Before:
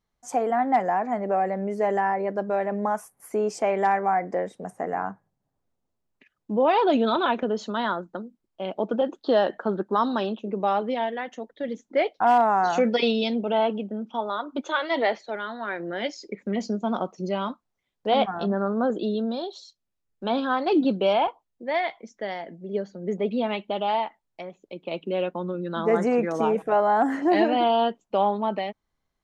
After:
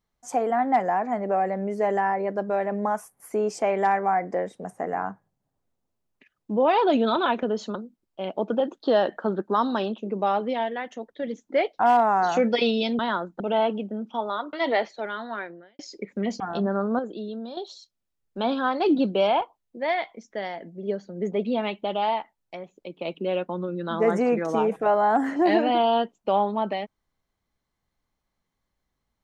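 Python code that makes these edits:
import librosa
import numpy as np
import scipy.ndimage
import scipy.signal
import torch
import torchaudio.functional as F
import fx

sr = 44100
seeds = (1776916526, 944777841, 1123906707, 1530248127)

y = fx.edit(x, sr, fx.move(start_s=7.75, length_s=0.41, to_s=13.4),
    fx.cut(start_s=14.53, length_s=0.3),
    fx.fade_out_span(start_s=15.64, length_s=0.45, curve='qua'),
    fx.cut(start_s=16.7, length_s=1.56),
    fx.clip_gain(start_s=18.85, length_s=0.58, db=-7.5), tone=tone)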